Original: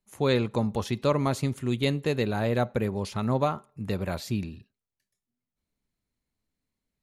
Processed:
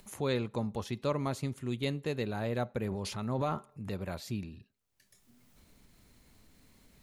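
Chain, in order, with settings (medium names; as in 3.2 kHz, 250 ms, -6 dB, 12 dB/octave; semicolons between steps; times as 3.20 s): upward compressor, threshold -29 dBFS; 2.82–3.93 s: transient shaper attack -2 dB, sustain +8 dB; trim -7.5 dB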